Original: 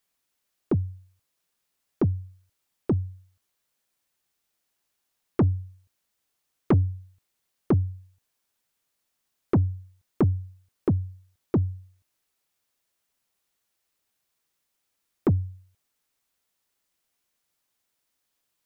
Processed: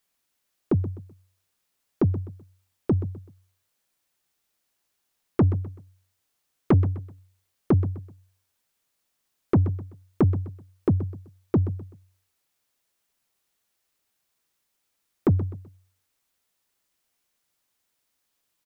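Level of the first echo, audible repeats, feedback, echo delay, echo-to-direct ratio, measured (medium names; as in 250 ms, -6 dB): -14.0 dB, 3, 33%, 127 ms, -13.5 dB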